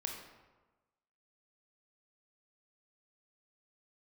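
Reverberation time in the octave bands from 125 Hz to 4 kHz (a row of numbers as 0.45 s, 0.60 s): 1.2 s, 1.2 s, 1.2 s, 1.2 s, 0.95 s, 0.75 s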